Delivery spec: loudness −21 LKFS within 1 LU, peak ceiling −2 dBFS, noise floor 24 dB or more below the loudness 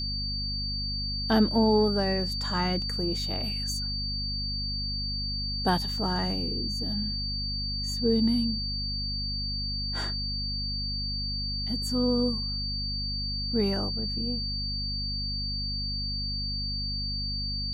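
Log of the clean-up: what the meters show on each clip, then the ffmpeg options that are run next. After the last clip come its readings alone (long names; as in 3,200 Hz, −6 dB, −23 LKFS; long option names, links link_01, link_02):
mains hum 50 Hz; hum harmonics up to 250 Hz; level of the hum −32 dBFS; interfering tone 4,600 Hz; level of the tone −31 dBFS; integrated loudness −28.5 LKFS; sample peak −11.5 dBFS; target loudness −21.0 LKFS
→ -af "bandreject=frequency=50:width_type=h:width=6,bandreject=frequency=100:width_type=h:width=6,bandreject=frequency=150:width_type=h:width=6,bandreject=frequency=200:width_type=h:width=6,bandreject=frequency=250:width_type=h:width=6"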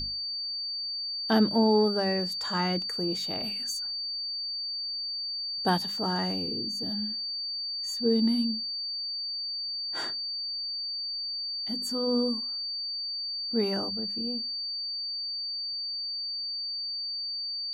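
mains hum none found; interfering tone 4,600 Hz; level of the tone −31 dBFS
→ -af "bandreject=frequency=4600:width=30"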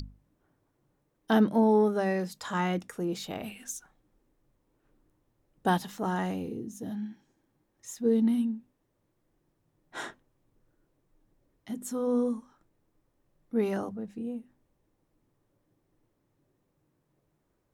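interfering tone none found; integrated loudness −30.0 LKFS; sample peak −12.0 dBFS; target loudness −21.0 LKFS
→ -af "volume=9dB"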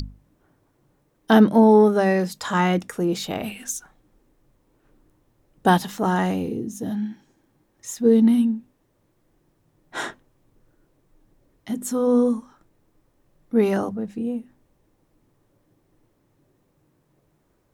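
integrated loudness −21.5 LKFS; sample peak −3.0 dBFS; background noise floor −67 dBFS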